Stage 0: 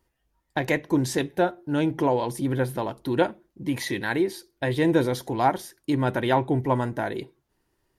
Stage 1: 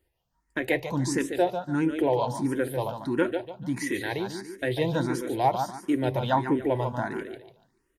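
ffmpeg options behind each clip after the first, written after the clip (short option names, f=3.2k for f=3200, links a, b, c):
-filter_complex "[0:a]aecho=1:1:145|290|435|580:0.422|0.139|0.0459|0.0152,asplit=2[a][b];[b]afreqshift=1.5[c];[a][c]amix=inputs=2:normalize=1"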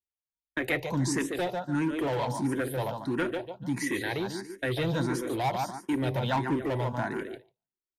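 -filter_complex "[0:a]agate=range=-33dB:threshold=-36dB:ratio=3:detection=peak,acrossover=split=240|1100|6200[a][b][c][d];[b]volume=30.5dB,asoftclip=hard,volume=-30.5dB[e];[a][e][c][d]amix=inputs=4:normalize=0"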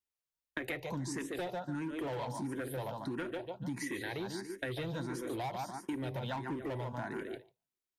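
-af "acompressor=threshold=-36dB:ratio=6"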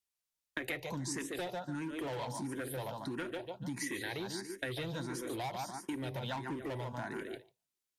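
-af "equalizer=f=7.8k:w=0.3:g=6,volume=-1.5dB"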